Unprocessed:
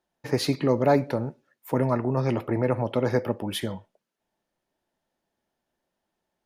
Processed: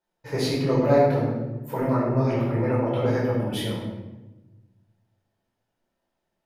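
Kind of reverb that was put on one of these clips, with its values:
rectangular room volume 580 cubic metres, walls mixed, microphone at 4.8 metres
level −10 dB

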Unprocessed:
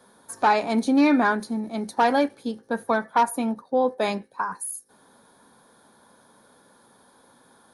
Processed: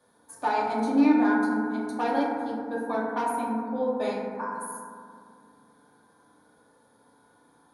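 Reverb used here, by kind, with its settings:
feedback delay network reverb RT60 2.2 s, low-frequency decay 1.35×, high-frequency decay 0.25×, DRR −4.5 dB
level −11.5 dB

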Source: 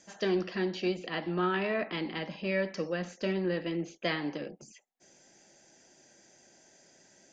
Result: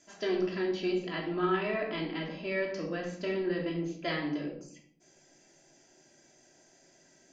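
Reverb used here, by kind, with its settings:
rectangular room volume 890 cubic metres, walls furnished, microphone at 3 metres
level −5 dB

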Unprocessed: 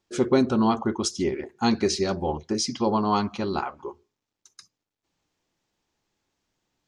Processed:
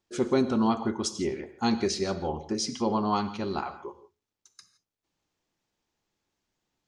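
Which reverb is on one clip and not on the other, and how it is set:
reverb whose tail is shaped and stops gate 190 ms flat, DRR 11 dB
level −4 dB

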